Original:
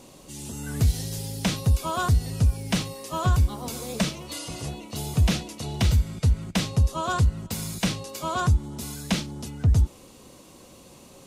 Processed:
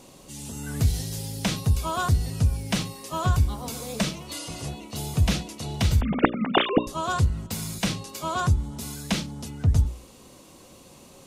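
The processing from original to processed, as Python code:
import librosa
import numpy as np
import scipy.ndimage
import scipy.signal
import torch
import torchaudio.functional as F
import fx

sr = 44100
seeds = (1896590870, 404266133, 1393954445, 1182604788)

y = fx.sine_speech(x, sr, at=(6.01, 6.87))
y = fx.hum_notches(y, sr, base_hz=60, count=10)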